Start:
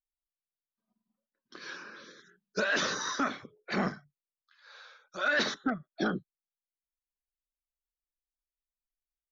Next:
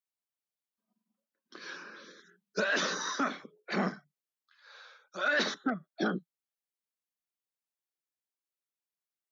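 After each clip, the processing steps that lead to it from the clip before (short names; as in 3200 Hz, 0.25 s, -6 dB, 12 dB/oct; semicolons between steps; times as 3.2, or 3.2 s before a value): Chebyshev high-pass 170 Hz, order 4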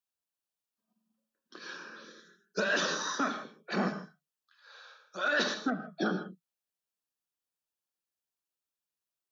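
notch 2100 Hz, Q 5.7; non-linear reverb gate 0.18 s flat, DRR 7.5 dB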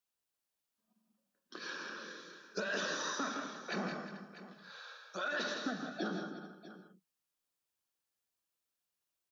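compressor 2.5:1, threshold -41 dBFS, peak gain reduction 11 dB; tapped delay 0.165/0.19/0.357/0.436/0.645 s -7/-12/-15.5/-20/-15 dB; gain +1.5 dB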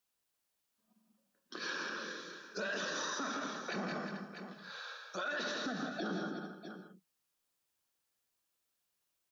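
limiter -34 dBFS, peak gain reduction 9 dB; gain +4.5 dB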